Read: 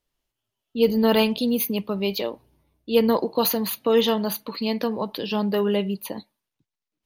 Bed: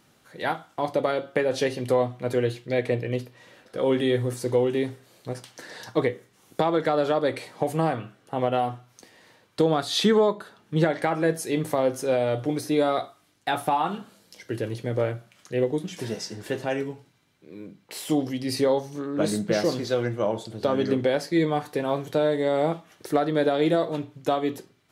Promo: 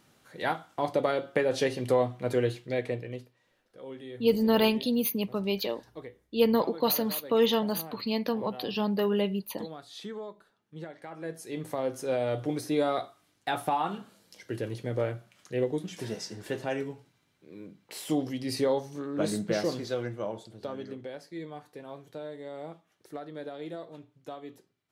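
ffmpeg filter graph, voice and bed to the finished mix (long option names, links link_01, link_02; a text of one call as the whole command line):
ffmpeg -i stem1.wav -i stem2.wav -filter_complex "[0:a]adelay=3450,volume=-4.5dB[link_01];[1:a]volume=13dB,afade=type=out:start_time=2.44:duration=0.97:silence=0.133352,afade=type=in:start_time=11.04:duration=1.3:silence=0.16788,afade=type=out:start_time=19.46:duration=1.49:silence=0.223872[link_02];[link_01][link_02]amix=inputs=2:normalize=0" out.wav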